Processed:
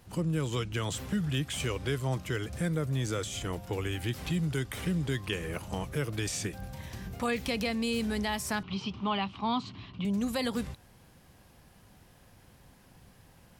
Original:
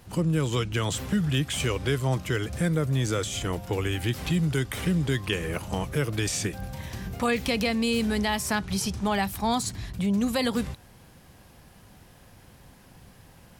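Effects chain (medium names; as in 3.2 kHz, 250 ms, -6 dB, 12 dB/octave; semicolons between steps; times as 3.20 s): 8.63–10.05 s: cabinet simulation 120–4000 Hz, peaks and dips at 270 Hz +4 dB, 500 Hz -5 dB, 710 Hz -3 dB, 1.1 kHz +9 dB, 1.7 kHz -9 dB, 2.9 kHz +9 dB; trim -5.5 dB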